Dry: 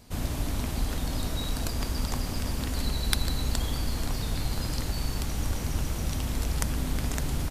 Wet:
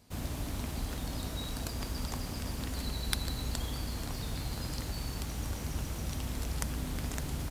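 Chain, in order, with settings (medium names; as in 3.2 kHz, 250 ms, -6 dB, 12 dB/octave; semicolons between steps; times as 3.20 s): high-pass 41 Hz; in parallel at -9.5 dB: bit crusher 7-bit; on the sum: trim -8 dB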